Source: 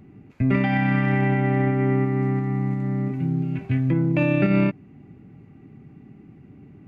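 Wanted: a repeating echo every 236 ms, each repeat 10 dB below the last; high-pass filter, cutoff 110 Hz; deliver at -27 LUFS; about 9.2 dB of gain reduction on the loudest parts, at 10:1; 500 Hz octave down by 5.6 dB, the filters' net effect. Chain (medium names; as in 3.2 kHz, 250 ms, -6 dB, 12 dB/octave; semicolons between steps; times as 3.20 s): high-pass 110 Hz; peaking EQ 500 Hz -8 dB; compression 10:1, threshold -26 dBFS; feedback delay 236 ms, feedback 32%, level -10 dB; trim +2.5 dB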